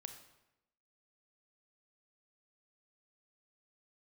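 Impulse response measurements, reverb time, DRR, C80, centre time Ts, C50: 0.90 s, 6.5 dB, 10.5 dB, 17 ms, 8.5 dB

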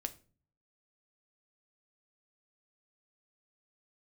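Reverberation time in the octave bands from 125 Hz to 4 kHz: 0.80, 0.65, 0.45, 0.35, 0.30, 0.30 seconds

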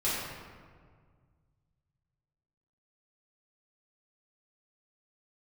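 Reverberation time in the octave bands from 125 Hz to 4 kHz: 3.1, 2.2, 1.9, 1.7, 1.4, 0.95 seconds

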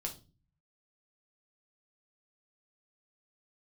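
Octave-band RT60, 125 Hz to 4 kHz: 0.90, 0.65, 0.40, 0.30, 0.25, 0.30 seconds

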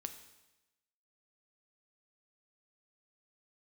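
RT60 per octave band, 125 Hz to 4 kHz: 1.0, 1.0, 1.0, 1.0, 1.0, 1.0 seconds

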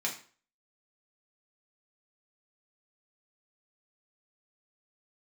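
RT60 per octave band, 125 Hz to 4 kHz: 0.40, 0.40, 0.45, 0.40, 0.40, 0.35 seconds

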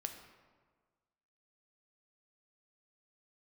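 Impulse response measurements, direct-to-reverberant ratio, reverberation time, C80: 5.0 dB, 1.5 s, 9.0 dB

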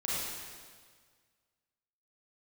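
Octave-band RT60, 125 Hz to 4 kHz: 1.9, 1.7, 1.7, 1.7, 1.6, 1.6 seconds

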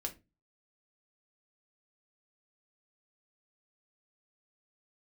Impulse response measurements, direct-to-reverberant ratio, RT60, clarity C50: 2.5 dB, 0.25 s, 16.0 dB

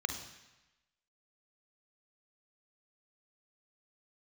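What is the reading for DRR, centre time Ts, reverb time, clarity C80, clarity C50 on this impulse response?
5.5 dB, 22 ms, 1.0 s, 9.5 dB, 7.0 dB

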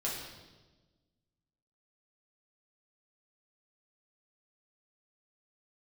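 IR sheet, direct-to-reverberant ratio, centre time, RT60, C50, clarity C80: −5.5 dB, 60 ms, 1.2 s, 2.5 dB, 4.5 dB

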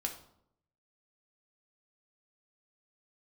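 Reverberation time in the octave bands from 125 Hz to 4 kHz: 1.0, 0.85, 0.75, 0.65, 0.50, 0.45 seconds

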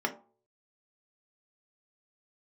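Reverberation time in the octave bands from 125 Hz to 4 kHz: 0.55, 0.40, 0.45, 0.45, 0.20, 0.15 seconds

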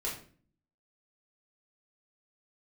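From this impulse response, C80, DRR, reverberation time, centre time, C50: 11.0 dB, −5.5 dB, 0.45 s, 31 ms, 6.5 dB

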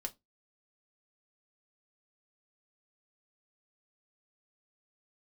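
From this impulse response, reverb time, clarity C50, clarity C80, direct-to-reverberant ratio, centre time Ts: 0.20 s, 22.5 dB, 32.5 dB, 3.0 dB, 5 ms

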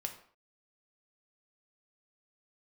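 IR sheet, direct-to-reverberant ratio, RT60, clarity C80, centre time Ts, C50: 4.0 dB, non-exponential decay, 13.5 dB, 13 ms, 10.0 dB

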